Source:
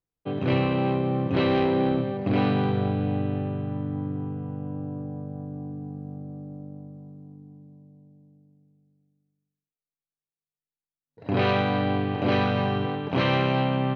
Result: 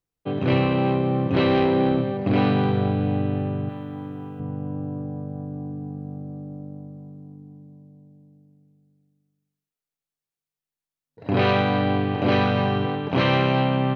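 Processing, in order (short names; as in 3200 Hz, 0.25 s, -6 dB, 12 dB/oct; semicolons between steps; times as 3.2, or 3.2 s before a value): 3.69–4.4 tilt +3 dB/oct; gain +3 dB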